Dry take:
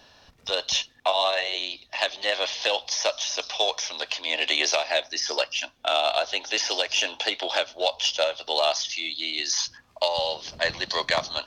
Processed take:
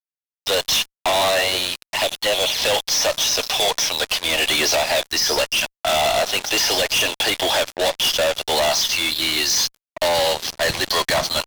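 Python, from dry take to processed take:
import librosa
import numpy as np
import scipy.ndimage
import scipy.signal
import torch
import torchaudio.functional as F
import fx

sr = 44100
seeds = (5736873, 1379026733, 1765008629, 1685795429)

y = fx.env_flanger(x, sr, rest_ms=4.9, full_db=-23.5, at=(1.87, 2.58))
y = fx.fuzz(y, sr, gain_db=35.0, gate_db=-39.0)
y = F.gain(torch.from_numpy(y), -3.0).numpy()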